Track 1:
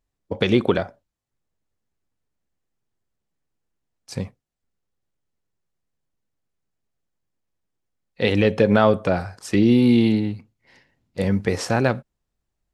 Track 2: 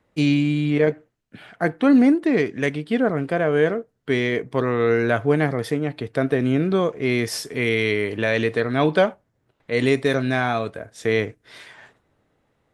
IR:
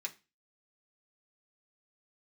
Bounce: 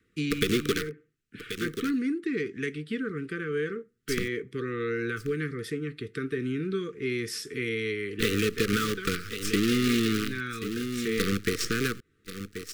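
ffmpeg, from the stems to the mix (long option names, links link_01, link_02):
-filter_complex "[0:a]highpass=frequency=150:poles=1,highshelf=frequency=4400:gain=11,acrusher=bits=4:dc=4:mix=0:aa=0.000001,volume=2.5dB,asplit=2[link_01][link_02];[link_02]volume=-18dB[link_03];[1:a]acompressor=threshold=-39dB:ratio=1.5,volume=-2.5dB,asplit=2[link_04][link_05];[link_05]volume=-6.5dB[link_06];[2:a]atrim=start_sample=2205[link_07];[link_06][link_07]afir=irnorm=-1:irlink=0[link_08];[link_03]aecho=0:1:1082:1[link_09];[link_01][link_04][link_08][link_09]amix=inputs=4:normalize=0,acrossover=split=1100|5800[link_10][link_11][link_12];[link_10]acompressor=threshold=-24dB:ratio=4[link_13];[link_11]acompressor=threshold=-31dB:ratio=4[link_14];[link_12]acompressor=threshold=-39dB:ratio=4[link_15];[link_13][link_14][link_15]amix=inputs=3:normalize=0,asuperstop=centerf=750:order=20:qfactor=1.1"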